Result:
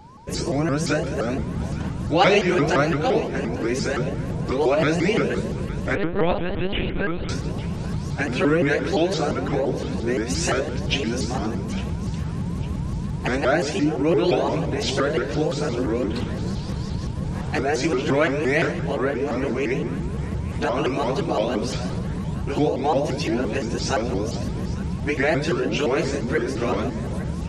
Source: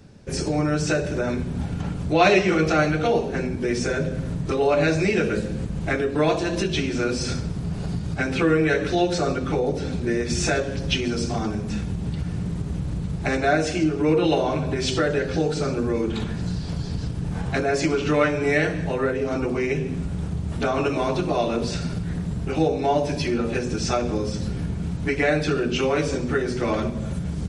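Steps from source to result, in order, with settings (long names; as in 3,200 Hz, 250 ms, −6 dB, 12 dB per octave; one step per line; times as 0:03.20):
steady tone 980 Hz −46 dBFS
delay that swaps between a low-pass and a high-pass 427 ms, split 960 Hz, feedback 68%, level −13.5 dB
0:05.95–0:07.29: one-pitch LPC vocoder at 8 kHz 180 Hz
pitch modulation by a square or saw wave saw up 5.8 Hz, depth 250 cents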